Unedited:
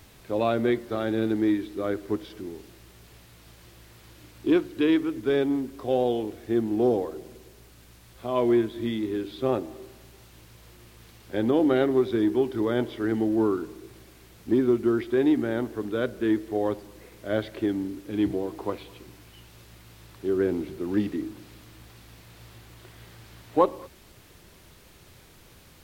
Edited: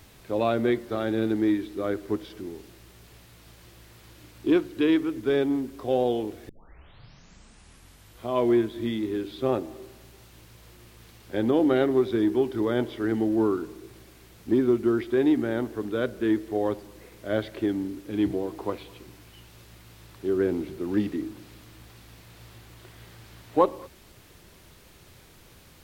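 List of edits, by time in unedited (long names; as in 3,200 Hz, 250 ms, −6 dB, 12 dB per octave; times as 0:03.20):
0:06.49: tape start 1.80 s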